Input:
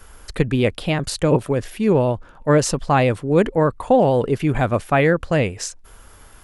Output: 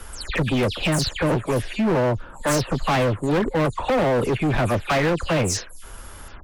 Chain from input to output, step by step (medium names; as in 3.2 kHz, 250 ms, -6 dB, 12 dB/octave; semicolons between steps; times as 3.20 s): delay that grows with frequency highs early, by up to 152 ms; in parallel at 0 dB: compression, threshold -25 dBFS, peak gain reduction 13.5 dB; on the sum: overload inside the chain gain 17.5 dB